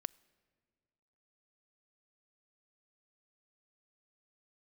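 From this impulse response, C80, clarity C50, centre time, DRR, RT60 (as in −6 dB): 26.0 dB, 24.5 dB, 2 ms, 23.5 dB, 1.8 s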